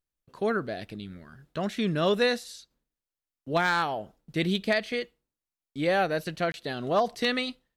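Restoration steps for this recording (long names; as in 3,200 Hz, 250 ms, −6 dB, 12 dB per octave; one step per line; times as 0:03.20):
clipped peaks rebuilt −15 dBFS
repair the gap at 0:06.52, 21 ms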